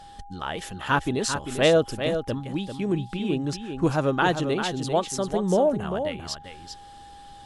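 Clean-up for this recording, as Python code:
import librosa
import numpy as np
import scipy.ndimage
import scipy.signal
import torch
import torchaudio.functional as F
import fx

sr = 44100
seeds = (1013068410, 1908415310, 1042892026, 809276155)

y = fx.notch(x, sr, hz=810.0, q=30.0)
y = fx.fix_echo_inverse(y, sr, delay_ms=395, level_db=-8.0)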